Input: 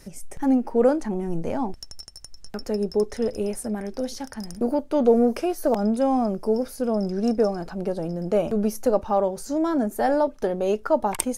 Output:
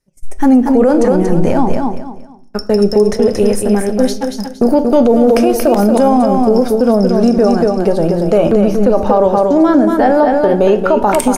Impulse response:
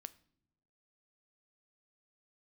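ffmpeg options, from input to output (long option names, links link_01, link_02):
-filter_complex "[0:a]agate=range=-39dB:threshold=-31dB:ratio=16:detection=peak,asettb=1/sr,asplit=3[link_01][link_02][link_03];[link_01]atrim=end=8.384[link_04];[link_02]atrim=start=8.38:end=11.03,asetpts=PTS-STARTPTS,afade=type=in:duration=0.004:curve=qsin,afade=type=out:start_time=2.646:duration=0.004:curve=qsin,acrossover=split=4000[link_05][link_06];[link_06]acompressor=threshold=-58dB:ratio=4:attack=1:release=60[link_07];[link_05][link_07]amix=inputs=2:normalize=0[link_08];[link_03]atrim=start=11.026[link_09];[link_04][link_08]acrossfade=duration=0.004:curve1=hsin:curve2=qsin[link_10];[link_10][link_09]acrossfade=duration=0.004:curve1=qsin:curve2=hsin,flanger=delay=7.4:depth=5.2:regen=85:speed=0.26:shape=sinusoidal,aecho=1:1:232|464|696:0.501|0.135|0.0365[link_11];[1:a]atrim=start_sample=2205[link_12];[link_11][link_12]afir=irnorm=-1:irlink=0,alimiter=level_in=26dB:limit=-1dB:release=50:level=0:latency=1,volume=-1dB"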